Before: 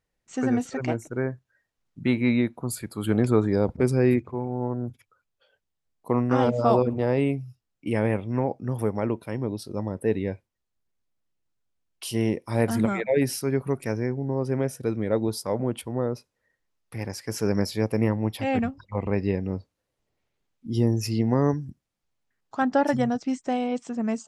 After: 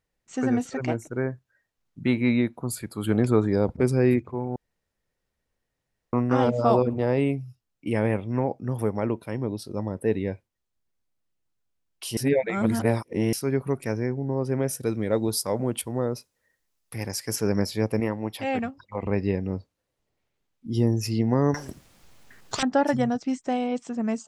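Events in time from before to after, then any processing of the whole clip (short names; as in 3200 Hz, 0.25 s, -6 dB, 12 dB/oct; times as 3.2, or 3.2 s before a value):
4.56–6.13 room tone
12.17–13.33 reverse
14.67–17.36 high shelf 4700 Hz +11 dB
18–19.03 low shelf 170 Hz -12 dB
21.54–22.63 spectral compressor 10:1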